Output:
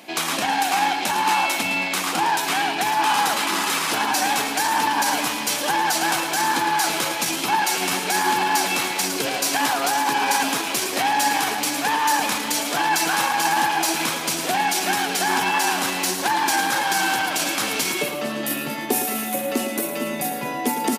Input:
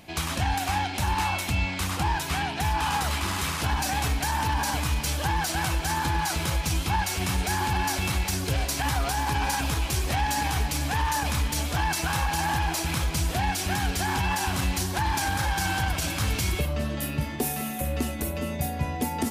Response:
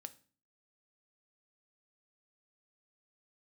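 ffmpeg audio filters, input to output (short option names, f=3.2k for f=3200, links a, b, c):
-filter_complex "[0:a]highpass=f=240:w=0.5412,highpass=f=240:w=1.3066,acontrast=84,atempo=0.92,asplit=2[a][b];[b]aecho=0:1:110|220|330|440:0.335|0.131|0.0509|0.0199[c];[a][c]amix=inputs=2:normalize=0"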